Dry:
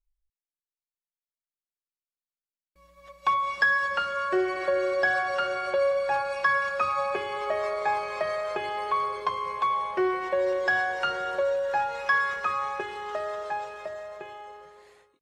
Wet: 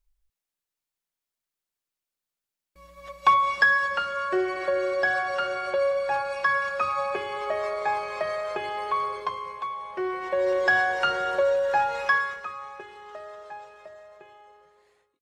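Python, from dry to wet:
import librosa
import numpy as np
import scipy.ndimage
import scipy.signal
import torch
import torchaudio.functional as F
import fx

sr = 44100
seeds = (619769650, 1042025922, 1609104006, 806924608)

y = fx.gain(x, sr, db=fx.line((3.14, 7.0), (4.02, 0.0), (9.14, 0.0), (9.76, -8.0), (10.59, 3.5), (12.04, 3.5), (12.52, -9.0)))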